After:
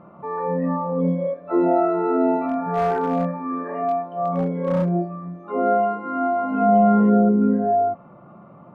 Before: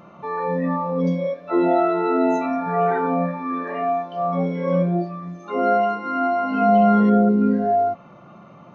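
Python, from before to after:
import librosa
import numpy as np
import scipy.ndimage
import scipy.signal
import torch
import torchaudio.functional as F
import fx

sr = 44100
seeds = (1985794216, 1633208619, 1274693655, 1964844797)

y = scipy.signal.sosfilt(scipy.signal.butter(2, 1300.0, 'lowpass', fs=sr, output='sos'), x)
y = fx.clip_hard(y, sr, threshold_db=-15.5, at=(2.48, 4.89))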